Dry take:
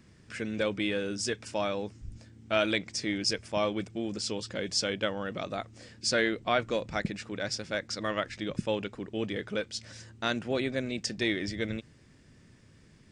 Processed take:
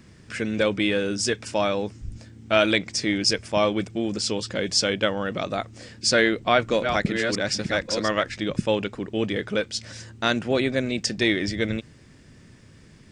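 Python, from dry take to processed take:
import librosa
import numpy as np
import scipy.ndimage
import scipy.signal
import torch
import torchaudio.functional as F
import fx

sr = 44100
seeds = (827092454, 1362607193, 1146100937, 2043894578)

y = fx.reverse_delay(x, sr, ms=638, wet_db=-6.5, at=(6.08, 8.23))
y = y * 10.0 ** (7.5 / 20.0)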